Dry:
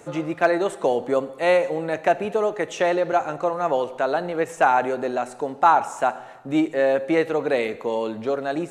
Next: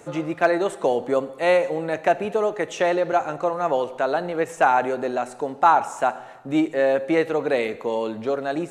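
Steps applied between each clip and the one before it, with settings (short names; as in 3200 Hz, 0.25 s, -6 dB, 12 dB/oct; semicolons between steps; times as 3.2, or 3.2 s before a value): nothing audible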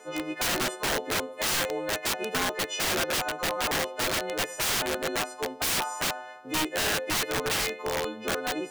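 frequency quantiser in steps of 3 st; three-band isolator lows -17 dB, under 230 Hz, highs -12 dB, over 5100 Hz; wrapped overs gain 18 dB; gain -4 dB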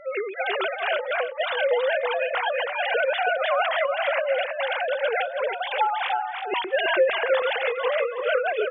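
sine-wave speech; on a send: feedback echo 0.323 s, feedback 21%, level -5.5 dB; on the sum: ending taper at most 110 dB/s; gain +4.5 dB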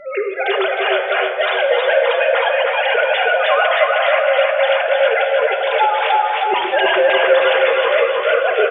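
on a send: feedback echo 0.31 s, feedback 54%, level -4 dB; on the sum: shoebox room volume 2600 m³, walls mixed, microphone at 1.3 m; gain +5.5 dB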